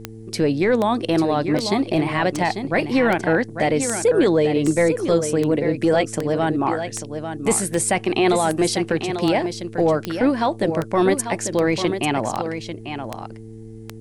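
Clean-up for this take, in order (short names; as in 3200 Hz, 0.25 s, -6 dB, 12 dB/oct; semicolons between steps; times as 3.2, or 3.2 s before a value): de-click; de-hum 111.2 Hz, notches 4; expander -28 dBFS, range -21 dB; inverse comb 0.845 s -8.5 dB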